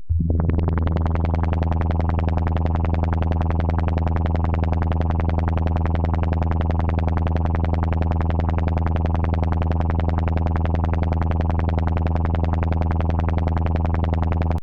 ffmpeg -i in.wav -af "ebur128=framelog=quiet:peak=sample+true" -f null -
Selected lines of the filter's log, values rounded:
Integrated loudness:
  I:         -21.8 LUFS
  Threshold: -31.8 LUFS
Loudness range:
  LRA:         0.0 LU
  Threshold: -41.8 LUFS
  LRA low:   -21.9 LUFS
  LRA high:  -21.8 LUFS
Sample peak:
  Peak:       -9.3 dBFS
True peak:
  Peak:       -9.3 dBFS